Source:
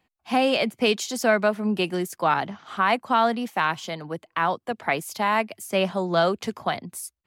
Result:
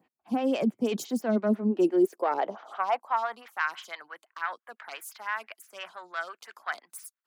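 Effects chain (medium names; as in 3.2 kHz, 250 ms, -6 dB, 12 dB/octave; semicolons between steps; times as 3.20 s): self-modulated delay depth 0.078 ms; peaking EQ 280 Hz +8.5 dB 2.1 oct; reverse; compression 4:1, threshold -26 dBFS, peak gain reduction 13 dB; reverse; high-pass sweep 140 Hz -> 1.5 kHz, 0.96–3.67 s; lamp-driven phase shifter 5.9 Hz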